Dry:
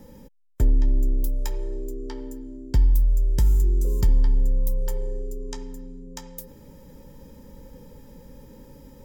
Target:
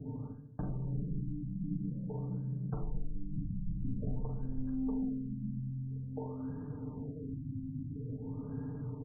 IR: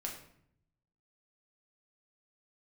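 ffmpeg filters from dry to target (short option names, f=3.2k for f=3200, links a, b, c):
-filter_complex "[0:a]highpass=160,lowpass=3.2k,bandreject=f=50:t=h:w=6,bandreject=f=100:t=h:w=6,bandreject=f=150:t=h:w=6,bandreject=f=200:t=h:w=6,bandreject=f=250:t=h:w=6,bandreject=f=300:t=h:w=6,bandreject=f=350:t=h:w=6,bandreject=f=400:t=h:w=6,aecho=1:1:3.4:1,asplit=2[a][b];[b]adelay=117,lowpass=f=1.1k:p=1,volume=-15.5dB,asplit=2[c][d];[d]adelay=117,lowpass=f=1.1k:p=1,volume=0.17[e];[a][c][e]amix=inputs=3:normalize=0,asetrate=22050,aresample=44100,atempo=2,asoftclip=type=tanh:threshold=-28dB,acompressor=threshold=-41dB:ratio=4,asplit=2[f][g];[1:a]atrim=start_sample=2205,adelay=42[h];[g][h]afir=irnorm=-1:irlink=0,volume=-0.5dB[i];[f][i]amix=inputs=2:normalize=0,afftfilt=real='re*lt(b*sr/1024,290*pow(1800/290,0.5+0.5*sin(2*PI*0.49*pts/sr)))':imag='im*lt(b*sr/1024,290*pow(1800/290,0.5+0.5*sin(2*PI*0.49*pts/sr)))':win_size=1024:overlap=0.75,volume=4.5dB"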